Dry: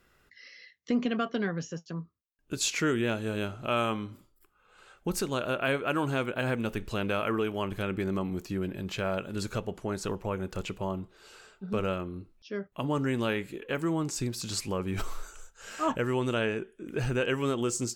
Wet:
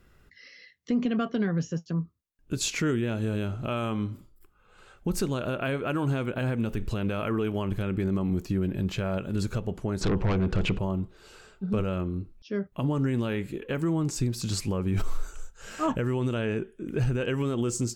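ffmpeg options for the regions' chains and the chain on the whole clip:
-filter_complex "[0:a]asettb=1/sr,asplit=3[s0][s1][s2];[s0]atrim=end=10.014[s3];[s1]atrim=start=10.01:end=10.79,asetpts=PTS-STARTPTS,afade=t=in:d=0.004:c=qsin,afade=t=out:st=0.776:d=0.004:c=qsin,lowpass=3900,aeval=exprs='0.106*sin(PI/2*2.82*val(0)/0.106)':c=same[s4];[s2]atrim=start=10.786[s5];[s3][s4]acrossfade=d=0.004:c1=hsin:c2=qsin[s6];[s6][s5]acrossfade=d=0.004:c1=qsin:c2=hsin,lowshelf=f=280:g=11.5,alimiter=limit=0.126:level=0:latency=1:release=87"

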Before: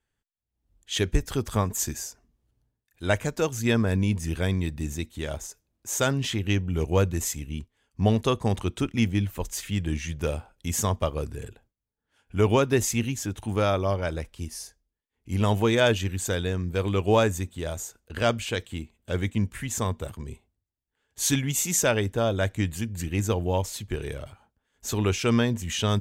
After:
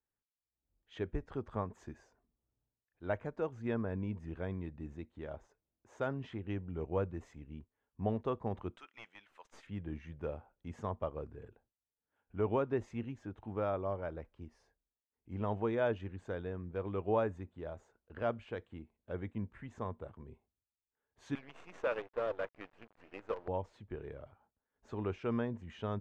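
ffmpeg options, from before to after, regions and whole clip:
-filter_complex "[0:a]asettb=1/sr,asplit=3[s0][s1][s2];[s0]atrim=end=8.764[s3];[s1]atrim=start=8.76:end=9.67,asetpts=PTS-STARTPTS,afade=t=in:d=0.004:c=qsin,afade=t=out:st=0.906:d=0.004:c=qsin,highpass=1300,highshelf=f=3100:g=11.5,aeval=exprs='(tanh(10*val(0)+0.25)-tanh(0.25))/10':c=same[s4];[s2]atrim=start=9.666[s5];[s3][s4]acrossfade=d=0.004:c1=hsin:c2=qsin[s6];[s6][s5]acrossfade=d=0.004:c1=qsin:c2=hsin,asettb=1/sr,asplit=3[s7][s8][s9];[s7]atrim=end=21.354[s10];[s8]atrim=start=21.35:end=23.48,asetpts=PTS-STARTPTS,afade=t=in:d=0.004:c=qsin,afade=t=out:st=2.126:d=0.004:c=qsin,highpass=480,equalizer=f=500:t=q:w=4:g=8,equalizer=f=740:t=q:w=4:g=-10,equalizer=f=1200:t=q:w=4:g=5,equalizer=f=2600:t=q:w=4:g=7,equalizer=f=4800:t=q:w=4:g=-4,equalizer=f=6900:t=q:w=4:g=-7,lowpass=f=8300:w=0.5412,lowpass=f=8300:w=1.3066,acrusher=bits=5:dc=4:mix=0:aa=0.000001[s11];[s9]atrim=start=23.476[s12];[s10][s11]acrossfade=d=0.004:c1=hsin:c2=qsin[s13];[s13][s12]acrossfade=d=0.004:c1=qsin:c2=hsin,lowpass=1200,lowshelf=f=230:g=-8.5,volume=0.376"

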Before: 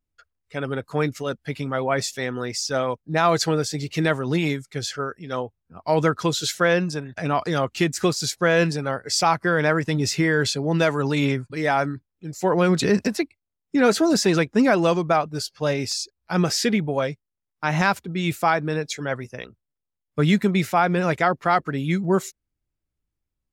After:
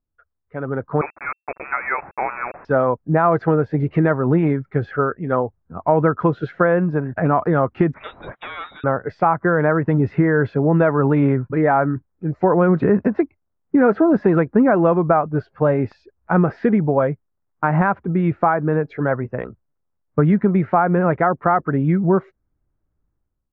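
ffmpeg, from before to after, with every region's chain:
-filter_complex "[0:a]asettb=1/sr,asplit=3[s0][s1][s2];[s0]atrim=end=1.014[s3];[s1]atrim=start=1.01:end=2.65,asetpts=PTS-STARTPTS,afade=t=in:d=0.004:c=qsin,afade=t=out:st=1.636:d=0.004:c=qsin,highpass=f=300:p=1,aeval=exprs='val(0)*gte(abs(val(0)),0.0251)':c=same,lowpass=f=2300:t=q:w=0.5098,lowpass=f=2300:t=q:w=0.6013,lowpass=f=2300:t=q:w=0.9,lowpass=f=2300:t=q:w=2.563,afreqshift=-2700[s4];[s2]atrim=start=2.646[s5];[s3][s4]acrossfade=d=0.004:c1=hsin:c2=qsin[s6];[s6][s5]acrossfade=d=0.004:c1=qsin:c2=hsin,asettb=1/sr,asplit=3[s7][s8][s9];[s7]atrim=end=7.944[s10];[s8]atrim=start=7.94:end=8.84,asetpts=PTS-STARTPTS,afade=t=in:d=0.004:c=qsin,afade=t=out:st=0.896:d=0.004:c=qsin,asoftclip=type=hard:threshold=0.119,lowpass=f=3300:t=q:w=0.5098,lowpass=f=3300:t=q:w=0.6013,lowpass=f=3300:t=q:w=0.9,lowpass=f=3300:t=q:w=2.563,afreqshift=-3900[s11];[s9]atrim=start=8.836[s12];[s10][s11]acrossfade=d=0.004:c1=hsin:c2=qsin[s13];[s13][s12]acrossfade=d=0.004:c1=qsin:c2=hsin,acompressor=threshold=0.0501:ratio=2.5,lowpass=f=1500:w=0.5412,lowpass=f=1500:w=1.3066,dynaudnorm=f=550:g=3:m=3.98"

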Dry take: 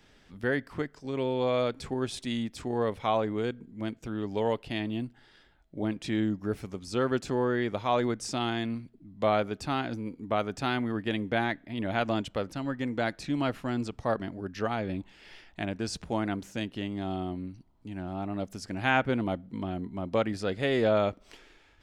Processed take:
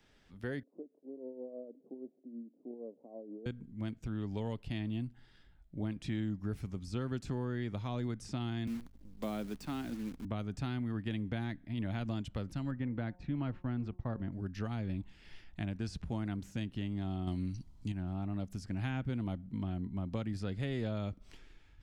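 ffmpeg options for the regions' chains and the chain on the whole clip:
-filter_complex "[0:a]asettb=1/sr,asplit=3[s0][s1][s2];[s0]atrim=end=0.634[s3];[s1]atrim=start=0.63:end=3.46,asetpts=PTS-STARTPTS,afade=t=in:d=0.004:c=qsin,afade=t=out:st=2.826:d=0.004:c=qsin,acompressor=threshold=0.0251:ratio=2:attack=3.2:release=140:knee=1:detection=peak,tremolo=f=6.3:d=0.56,asuperpass=centerf=390:order=8:qfactor=1[s4];[s2]atrim=start=3.456[s5];[s3][s4]acrossfade=d=0.004:c1=hsin:c2=qsin[s6];[s6][s5]acrossfade=d=0.004:c1=qsin:c2=hsin,asettb=1/sr,asplit=3[s7][s8][s9];[s7]atrim=end=8.674[s10];[s8]atrim=start=8.67:end=10.25,asetpts=PTS-STARTPTS,afade=t=in:d=0.004:c=qsin,afade=t=out:st=1.576:d=0.004:c=qsin,highpass=f=190:w=0.5412,highpass=f=190:w=1.3066,aeval=exprs='val(0)+0.001*(sin(2*PI*50*n/s)+sin(2*PI*2*50*n/s)/2+sin(2*PI*3*50*n/s)/3+sin(2*PI*4*50*n/s)/4+sin(2*PI*5*50*n/s)/5)':c=same,acrusher=bits=8:dc=4:mix=0:aa=0.000001[s11];[s9]atrim=start=10.246[s12];[s10][s11]acrossfade=d=0.004:c1=hsin:c2=qsin[s13];[s13][s12]acrossfade=d=0.004:c1=qsin:c2=hsin,asettb=1/sr,asplit=3[s14][s15][s16];[s14]atrim=end=12.714[s17];[s15]atrim=start=12.71:end=14.32,asetpts=PTS-STARTPTS,afade=t=in:d=0.004:c=qsin,afade=t=out:st=1.606:d=0.004:c=qsin,agate=range=0.0224:threshold=0.00794:ratio=3:release=100:detection=peak,lowpass=2200,bandreject=f=179.3:t=h:w=4,bandreject=f=358.6:t=h:w=4,bandreject=f=537.9:t=h:w=4,bandreject=f=717.2:t=h:w=4,bandreject=f=896.5:t=h:w=4,bandreject=f=1075.8:t=h:w=4[s18];[s16]atrim=start=14.316[s19];[s17][s18]acrossfade=d=0.004:c1=hsin:c2=qsin[s20];[s20][s19]acrossfade=d=0.004:c1=qsin:c2=hsin,asettb=1/sr,asplit=3[s21][s22][s23];[s21]atrim=end=17.274[s24];[s22]atrim=start=17.27:end=17.92,asetpts=PTS-STARTPTS,afade=t=in:d=0.004:c=qsin,afade=t=out:st=0.646:d=0.004:c=qsin,equalizer=f=6300:w=0.58:g=13,acontrast=38[s25];[s23]atrim=start=17.916[s26];[s24][s25]acrossfade=d=0.004:c1=hsin:c2=qsin[s27];[s27][s26]acrossfade=d=0.004:c1=qsin:c2=hsin,asubboost=boost=4.5:cutoff=210,acrossover=split=450|3600[s28][s29][s30];[s28]acompressor=threshold=0.0501:ratio=4[s31];[s29]acompressor=threshold=0.0141:ratio=4[s32];[s30]acompressor=threshold=0.00501:ratio=4[s33];[s31][s32][s33]amix=inputs=3:normalize=0,volume=0.422"

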